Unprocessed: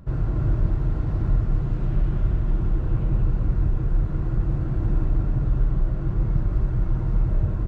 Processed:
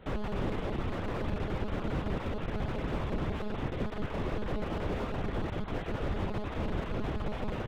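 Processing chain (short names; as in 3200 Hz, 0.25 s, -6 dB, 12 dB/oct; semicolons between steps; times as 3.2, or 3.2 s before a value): minimum comb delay 2 ms; elliptic band-pass 160–1300 Hz, stop band 70 dB; reverb removal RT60 1.5 s; in parallel at -3 dB: limiter -31.5 dBFS, peak gain reduction 9.5 dB; on the sum: requantised 6-bit, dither none; sine folder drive 10 dB, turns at -19 dBFS; pre-echo 0.109 s -21.5 dB; reverb RT60 1.1 s, pre-delay 3 ms, DRR 16.5 dB; monotone LPC vocoder at 8 kHz 210 Hz; slew limiter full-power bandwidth 42 Hz; gain -8.5 dB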